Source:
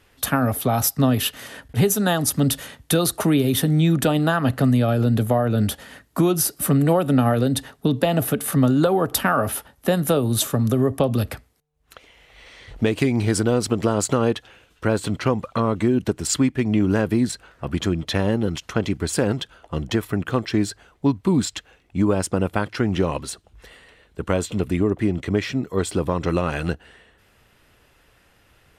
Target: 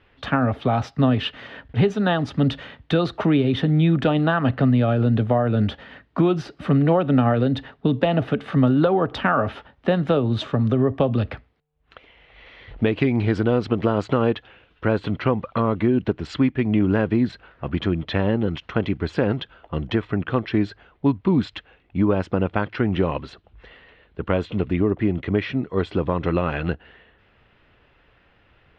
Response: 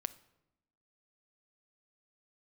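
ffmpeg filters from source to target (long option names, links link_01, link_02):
-af "lowpass=frequency=3400:width=0.5412,lowpass=frequency=3400:width=1.3066"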